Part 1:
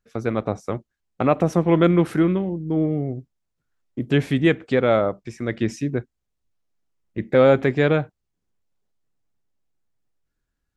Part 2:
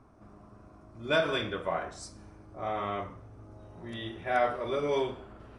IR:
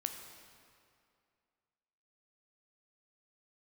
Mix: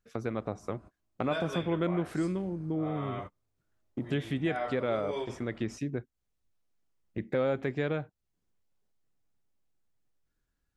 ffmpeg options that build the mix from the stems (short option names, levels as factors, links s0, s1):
-filter_complex "[0:a]volume=0.794,asplit=2[s0][s1];[1:a]lowpass=9100,highshelf=f=6200:g=6.5,bandreject=f=5700:w=5.3,adelay=200,volume=1.19[s2];[s1]apad=whole_len=255190[s3];[s2][s3]sidechaingate=range=0.0141:threshold=0.00891:ratio=16:detection=peak[s4];[s0][s4]amix=inputs=2:normalize=0,acompressor=threshold=0.0158:ratio=2"